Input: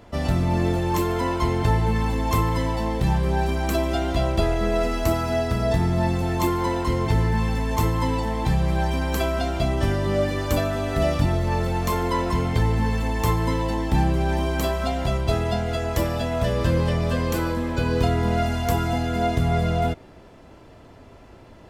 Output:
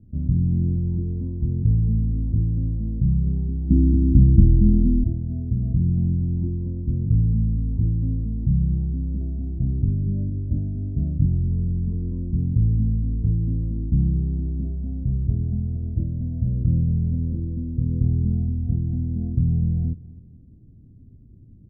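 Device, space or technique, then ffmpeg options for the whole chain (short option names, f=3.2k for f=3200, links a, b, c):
the neighbour's flat through the wall: -filter_complex "[0:a]asettb=1/sr,asplit=3[a][b][c];[a]atrim=end=3.704[d];[b]atrim=start=3.7:end=5.04,asetpts=PTS-STARTPTS,afade=t=in:d=0.004:c=qsin,afade=t=out:st=1.336:d=0.004:c=qsin,lowshelf=f=380:t=q:w=3:g=9[e];[c]atrim=start=5.036[f];[d][e]acrossfade=d=0.004:c1=hsin:c2=qsin[g];[g][f]acrossfade=d=0.004:c1=qsin:c2=hsin,lowpass=f=240:w=0.5412,lowpass=f=240:w=1.3066,equalizer=f=120:t=o:w=1:g=4,aecho=1:1:253|506|759:0.0944|0.0387|0.0159"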